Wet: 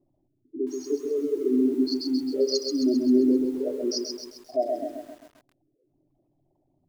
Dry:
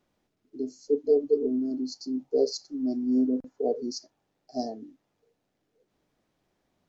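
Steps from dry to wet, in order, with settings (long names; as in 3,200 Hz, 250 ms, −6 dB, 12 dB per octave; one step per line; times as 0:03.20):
spectral envelope exaggerated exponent 3
phaser with its sweep stopped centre 310 Hz, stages 8
feedback echo at a low word length 132 ms, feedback 55%, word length 10 bits, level −4.5 dB
level +8 dB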